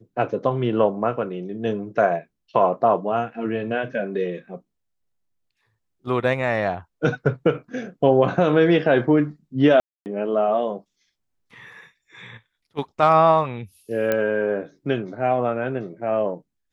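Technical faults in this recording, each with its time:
9.8–10.06 gap 0.259 s
14.12 pop -9 dBFS

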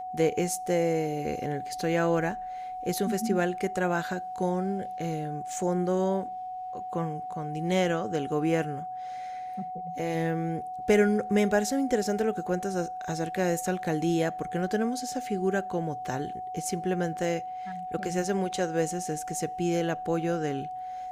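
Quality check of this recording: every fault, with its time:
tone 740 Hz -34 dBFS

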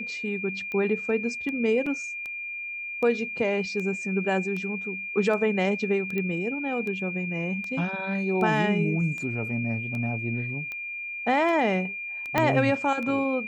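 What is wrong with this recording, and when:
tick 78 rpm -23 dBFS
tone 2400 Hz -32 dBFS
1.86 gap 4.6 ms
6.18 pop -18 dBFS
12.38 pop -9 dBFS

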